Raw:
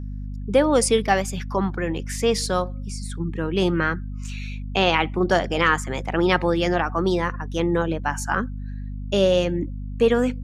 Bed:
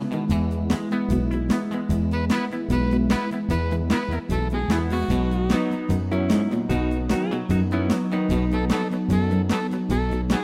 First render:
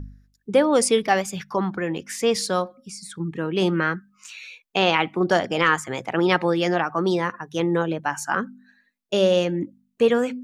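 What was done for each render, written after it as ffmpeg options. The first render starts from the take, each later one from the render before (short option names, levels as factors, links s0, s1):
-af "bandreject=f=50:t=h:w=4,bandreject=f=100:t=h:w=4,bandreject=f=150:t=h:w=4,bandreject=f=200:t=h:w=4,bandreject=f=250:t=h:w=4"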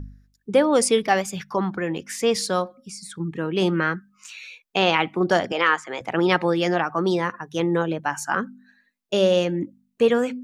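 -filter_complex "[0:a]asettb=1/sr,asplit=3[s0][s1][s2];[s0]atrim=end=5.524[s3];[s1]atrim=start=5.52:end=6.01,asetpts=PTS-STARTPTS,afade=t=in:d=0.004:c=qsin,afade=t=out:st=0.486:d=0.004:c=qsin,highpass=360,lowpass=5000[s4];[s2]atrim=start=6.006[s5];[s3][s4]acrossfade=d=0.004:c1=hsin:c2=qsin[s6];[s6][s5]acrossfade=d=0.004:c1=qsin:c2=hsin"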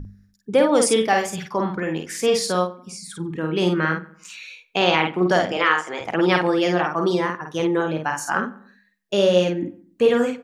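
-filter_complex "[0:a]asplit=2[s0][s1];[s1]adelay=50,volume=0.631[s2];[s0][s2]amix=inputs=2:normalize=0,asplit=2[s3][s4];[s4]adelay=95,lowpass=f=2100:p=1,volume=0.126,asplit=2[s5][s6];[s6]adelay=95,lowpass=f=2100:p=1,volume=0.42,asplit=2[s7][s8];[s8]adelay=95,lowpass=f=2100:p=1,volume=0.42[s9];[s3][s5][s7][s9]amix=inputs=4:normalize=0"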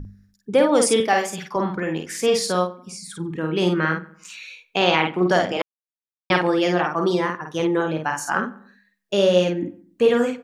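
-filter_complex "[0:a]asettb=1/sr,asplit=3[s0][s1][s2];[s0]atrim=end=1.004[s3];[s1]atrim=start=1:end=1.56,asetpts=PTS-STARTPTS,afade=t=in:d=0.004:c=qsin,afade=t=out:st=0.556:d=0.004:c=qsin,highpass=190[s4];[s2]atrim=start=1.556[s5];[s3][s4]acrossfade=d=0.004:c1=hsin:c2=qsin[s6];[s6][s5]acrossfade=d=0.004:c1=qsin:c2=hsin,asplit=3[s7][s8][s9];[s7]atrim=end=5.62,asetpts=PTS-STARTPTS,afade=t=out:st=5.616:d=0.004:c=hsin[s10];[s8]atrim=start=5.62:end=6.3,asetpts=PTS-STARTPTS,volume=0[s11];[s9]atrim=start=6.3,asetpts=PTS-STARTPTS,afade=t=in:d=0.004:c=hsin[s12];[s10][s11][s12]concat=n=3:v=0:a=1"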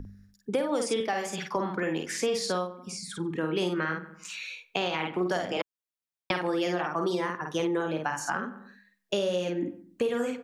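-filter_complex "[0:a]alimiter=limit=0.316:level=0:latency=1:release=286,acrossover=split=230|7400[s0][s1][s2];[s0]acompressor=threshold=0.00794:ratio=4[s3];[s1]acompressor=threshold=0.0447:ratio=4[s4];[s2]acompressor=threshold=0.00355:ratio=4[s5];[s3][s4][s5]amix=inputs=3:normalize=0"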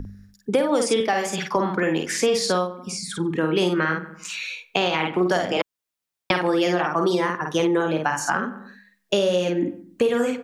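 -af "volume=2.37"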